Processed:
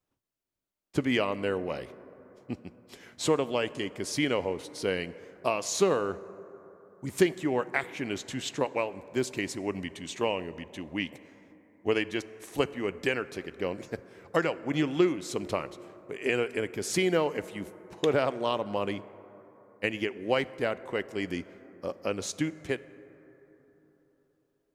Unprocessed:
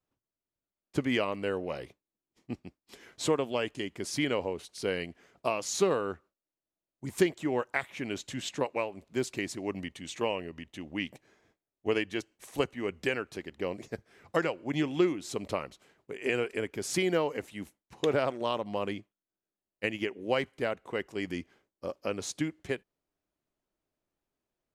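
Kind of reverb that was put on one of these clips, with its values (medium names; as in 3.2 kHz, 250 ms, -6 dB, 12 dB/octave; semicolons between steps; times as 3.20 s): plate-style reverb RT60 3.9 s, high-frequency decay 0.3×, DRR 16 dB; trim +2 dB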